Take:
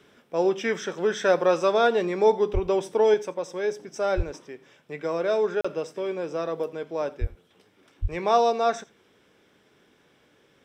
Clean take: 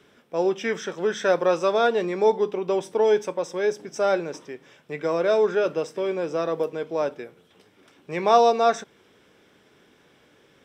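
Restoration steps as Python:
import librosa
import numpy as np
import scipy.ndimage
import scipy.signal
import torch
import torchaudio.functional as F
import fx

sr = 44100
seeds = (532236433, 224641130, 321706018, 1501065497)

y = fx.fix_deplosive(x, sr, at_s=(2.53, 4.16, 7.2, 8.01))
y = fx.fix_interpolate(y, sr, at_s=(5.61,), length_ms=35.0)
y = fx.fix_echo_inverse(y, sr, delay_ms=86, level_db=-21.5)
y = fx.fix_level(y, sr, at_s=3.14, step_db=3.5)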